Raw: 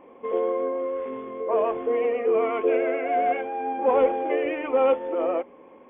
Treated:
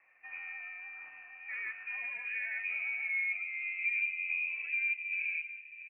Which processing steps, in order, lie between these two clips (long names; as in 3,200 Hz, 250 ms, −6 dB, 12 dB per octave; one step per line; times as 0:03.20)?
sub-octave generator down 2 octaves, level −5 dB
hum removal 64.36 Hz, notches 16
band-pass filter sweep 1,800 Hz → 430 Hz, 0:01.36–0:03.99
tape wow and flutter 20 cents
high-shelf EQ 2,200 Hz −11 dB
downward compressor 2.5 to 1, threshold −34 dBFS, peak gain reduction 10 dB
floating-point word with a short mantissa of 6 bits
high-frequency loss of the air 210 metres
single-tap delay 675 ms −14 dB
voice inversion scrambler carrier 2,900 Hz